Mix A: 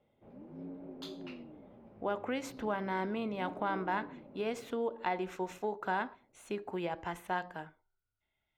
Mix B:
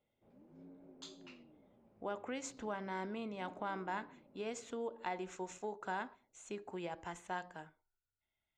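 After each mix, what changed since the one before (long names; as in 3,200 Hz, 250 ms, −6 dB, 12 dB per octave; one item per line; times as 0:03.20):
speech +5.0 dB
master: add transistor ladder low-pass 7,700 Hz, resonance 70%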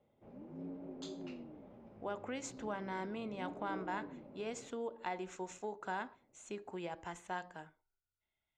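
background +11.0 dB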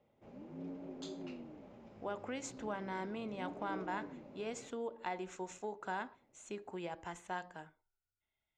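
background: remove low-pass filter 1,200 Hz 6 dB per octave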